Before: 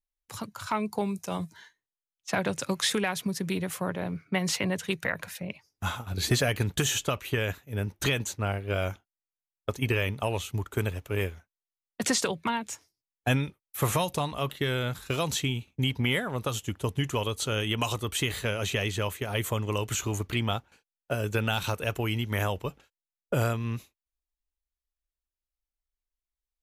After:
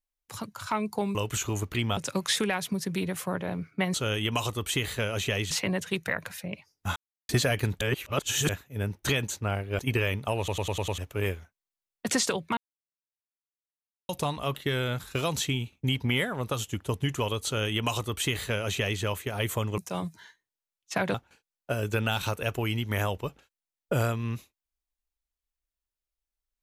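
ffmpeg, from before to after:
-filter_complex "[0:a]asplit=20[a][b][c][d][e][f][g][h][i][j][k][l][m][n][o][p][q][r][s][t];[a]atrim=end=1.152[u];[b]atrim=start=19.728:end=20.552[v];[c]atrim=start=2.508:end=4.482[w];[d]atrim=start=17.398:end=18.972[x];[e]atrim=start=4.478:end=5.93,asetpts=PTS-STARTPTS,afade=t=out:st=1.448:d=0.004:c=hsin[y];[f]atrim=start=5.93:end=6.26,asetpts=PTS-STARTPTS,volume=0[z];[g]atrim=start=6.26:end=6.782,asetpts=PTS-STARTPTS,afade=t=in:d=0.004:c=hsin[aa];[h]atrim=start=6.778:end=7.462,asetpts=PTS-STARTPTS,areverse[ab];[i]atrim=start=7.458:end=8.762[ac];[j]atrim=start=9.738:end=10.432[ad];[k]atrim=start=10.328:end=10.432[ae];[l]atrim=start=10.328:end=10.432[af];[m]atrim=start=10.328:end=10.432[ag];[n]atrim=start=10.328:end=10.432[ah];[o]atrim=start=10.328:end=10.432[ai];[p]atrim=start=10.928:end=12.52,asetpts=PTS-STARTPTS,afade=t=out:st=1.588:d=0.004:c=hsin[aj];[q]atrim=start=12.52:end=14.04,asetpts=PTS-STARTPTS,volume=0[ak];[r]atrim=start=14.04:end=19.732,asetpts=PTS-STARTPTS,afade=t=in:d=0.004:c=hsin[al];[s]atrim=start=1.148:end=2.512[am];[t]atrim=start=20.548[an];[u][v]acrossfade=d=0.004:c1=hsin:c2=hsin[ao];[ao][w]acrossfade=d=0.004:c1=hsin:c2=hsin[ap];[ap][x]acrossfade=d=0.004:c1=hsin:c2=hsin[aq];[y][z][aa]concat=n=3:v=0:a=1[ar];[aq][ar]acrossfade=d=0.004:c1=hsin:c2=hsin[as];[as][ab]acrossfade=d=0.004:c1=hsin:c2=hsin[at];[at][ac]acrossfade=d=0.004:c1=hsin:c2=hsin[au];[au][ad]acrossfade=d=0.004:c1=hsin:c2=hsin[av];[av][ae]acrossfade=d=0.004:c1=hsin:c2=hsin[aw];[aw][af]acrossfade=d=0.004:c1=hsin:c2=hsin[ax];[ax][ag]acrossfade=d=0.004:c1=hsin:c2=hsin[ay];[ay][ah]acrossfade=d=0.004:c1=hsin:c2=hsin[az];[az][ai]acrossfade=d=0.004:c1=hsin:c2=hsin[ba];[aj][ak][al]concat=n=3:v=0:a=1[bb];[ba][bb]acrossfade=d=0.004:c1=hsin:c2=hsin[bc];[bc][am]acrossfade=d=0.004:c1=hsin:c2=hsin[bd];[bd][an]acrossfade=d=0.004:c1=hsin:c2=hsin"

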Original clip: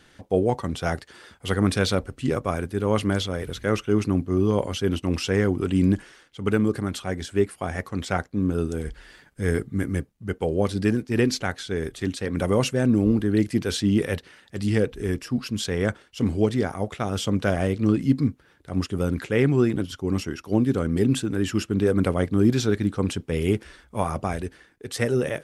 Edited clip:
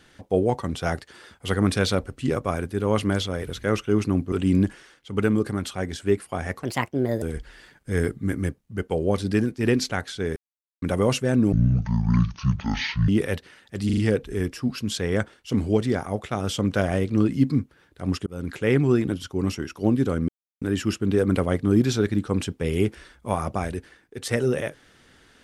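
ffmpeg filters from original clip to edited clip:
-filter_complex "[0:a]asplit=14[a][b][c][d][e][f][g][h][i][j][k][l][m][n];[a]atrim=end=4.322[o];[b]atrim=start=5.608:end=7.924[p];[c]atrim=start=7.92:end=8.73,asetpts=PTS-STARTPTS,asetrate=60417,aresample=44100[q];[d]atrim=start=8.726:end=11.87,asetpts=PTS-STARTPTS,afade=t=out:st=3.14:d=0.004:c=hsin[r];[e]atrim=start=11.87:end=12.33,asetpts=PTS-STARTPTS,volume=0[s];[f]atrim=start=12.33:end=13.034,asetpts=PTS-STARTPTS,afade=t=in:d=0.004:c=hsin[t];[g]atrim=start=13.03:end=13.89,asetpts=PTS-STARTPTS,asetrate=24255,aresample=44100,atrim=end_sample=68956,asetpts=PTS-STARTPTS[u];[h]atrim=start=13.886:end=14.702[v];[i]atrim=start=14.658:end=14.702[w];[j]atrim=start=14.658:end=14.702[x];[k]atrim=start=14.658:end=18.95,asetpts=PTS-STARTPTS,afade=t=out:st=4.288:d=0.004:c=hsin[y];[l]atrim=start=18.95:end=20.97,asetpts=PTS-STARTPTS,afade=t=in:d=0.46:c=qsin,afade=t=out:st=2.016:d=0.004:c=hsin[z];[m]atrim=start=20.97:end=21.3,asetpts=PTS-STARTPTS,volume=0[aa];[n]atrim=start=21.3,asetpts=PTS-STARTPTS,afade=t=in:d=0.004:c=hsin[ab];[o][p]acrossfade=d=0.004:c1=hsin:c2=hsin[ac];[ac][q]acrossfade=d=0.004:c1=hsin:c2=hsin[ad];[r][s][t]concat=n=3:v=0:a=1[ae];[ad][ae]acrossfade=d=0.004:c1=hsin:c2=hsin[af];[af][u]acrossfade=d=0.004:c1=hsin:c2=hsin[ag];[ag][v]acrossfade=d=0.004:c1=hsin:c2=hsin[ah];[ah][w]acrossfade=d=0.004:c1=hsin:c2=hsin[ai];[ai][x]acrossfade=d=0.004:c1=hsin:c2=hsin[aj];[y][z][aa][ab]concat=n=4:v=0:a=1[ak];[aj][ak]acrossfade=d=0.004:c1=hsin:c2=hsin"

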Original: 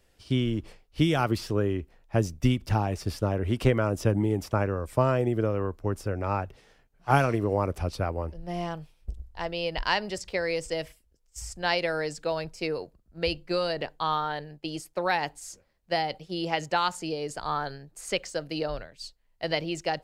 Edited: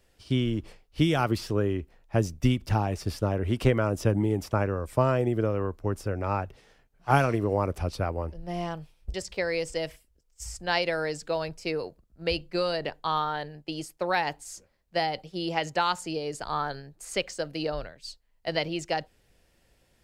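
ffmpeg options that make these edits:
-filter_complex "[0:a]asplit=2[a][b];[a]atrim=end=9.142[c];[b]atrim=start=10.098[d];[c][d]acrossfade=d=0.004:c1=hsin:c2=hsin"

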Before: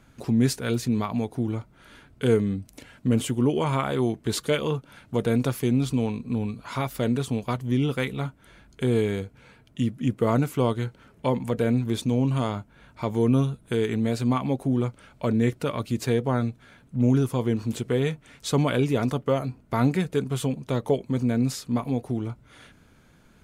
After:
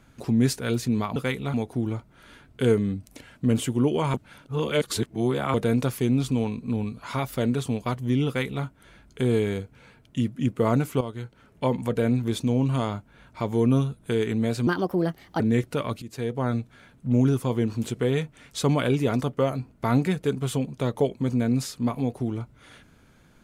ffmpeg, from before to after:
-filter_complex "[0:a]asplit=9[a][b][c][d][e][f][g][h][i];[a]atrim=end=1.162[j];[b]atrim=start=7.888:end=8.272[k];[c]atrim=start=1.158:end=3.762[l];[d]atrim=start=3.758:end=5.162,asetpts=PTS-STARTPTS,areverse[m];[e]atrim=start=5.158:end=10.63,asetpts=PTS-STARTPTS,afade=t=out:st=5.468:d=0.004:c=hsin:silence=0.251189[n];[f]atrim=start=10.63:end=14.294,asetpts=PTS-STARTPTS,afade=t=in:d=0.65:silence=0.251189[o];[g]atrim=start=14.29:end=15.29,asetpts=PTS-STARTPTS,asetrate=60417,aresample=44100[p];[h]atrim=start=15.286:end=15.91,asetpts=PTS-STARTPTS,afade=t=out:st=0.62:d=0.004:c=hsin:silence=0.16788[q];[i]atrim=start=15.91,asetpts=PTS-STARTPTS,afade=t=in:d=0.55:silence=0.16788[r];[j][k]acrossfade=d=0.004:c1=hsin:c2=hsin[s];[s][l]acrossfade=d=0.004:c1=hsin:c2=hsin[t];[t][m]acrossfade=d=0.004:c1=hsin:c2=hsin[u];[n][o]concat=n=2:v=0:a=1[v];[u][v]acrossfade=d=0.004:c1=hsin:c2=hsin[w];[w][p]acrossfade=d=0.004:c1=hsin:c2=hsin[x];[q][r]concat=n=2:v=0:a=1[y];[x][y]acrossfade=d=0.004:c1=hsin:c2=hsin"

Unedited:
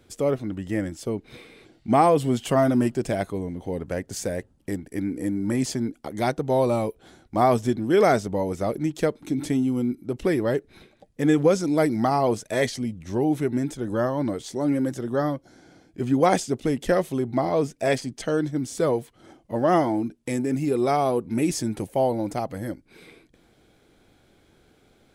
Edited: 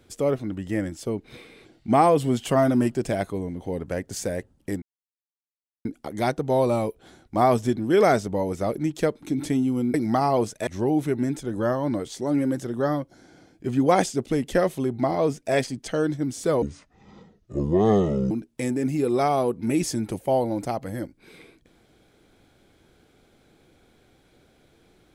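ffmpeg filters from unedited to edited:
-filter_complex "[0:a]asplit=7[a][b][c][d][e][f][g];[a]atrim=end=4.82,asetpts=PTS-STARTPTS,afade=t=out:st=4.816:d=0.004:c=hsin[h];[b]atrim=start=4.82:end=5.85,asetpts=PTS-STARTPTS,volume=0[i];[c]atrim=start=5.85:end=9.942,asetpts=PTS-STARTPTS,afade=t=in:d=0.004:c=hsin[j];[d]atrim=start=11.838:end=12.572[k];[e]atrim=start=13.008:end=18.964[l];[f]atrim=start=18.96:end=19.99,asetpts=PTS-STARTPTS,asetrate=26901,aresample=44100[m];[g]atrim=start=19.986[n];[h][i][j]concat=n=3:v=0:a=1[o];[o][k]acrossfade=d=0.004:c1=hsin:c2=hsin[p];[p][l]acrossfade=d=0.004:c1=hsin:c2=hsin[q];[q][m]acrossfade=d=0.004:c1=hsin:c2=hsin[r];[r][n]acrossfade=d=0.004:c1=hsin:c2=hsin"

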